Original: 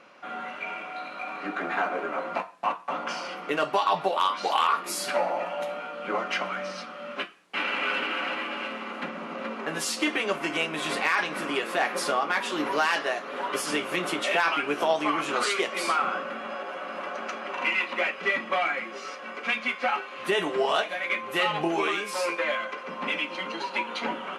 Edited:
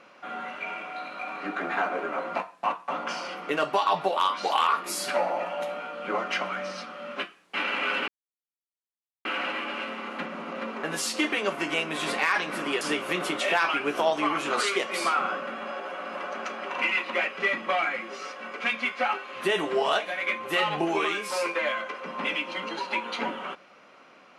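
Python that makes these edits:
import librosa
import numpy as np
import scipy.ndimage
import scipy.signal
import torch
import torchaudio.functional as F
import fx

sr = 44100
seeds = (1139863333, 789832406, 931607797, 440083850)

y = fx.edit(x, sr, fx.insert_silence(at_s=8.08, length_s=1.17),
    fx.cut(start_s=11.64, length_s=2.0), tone=tone)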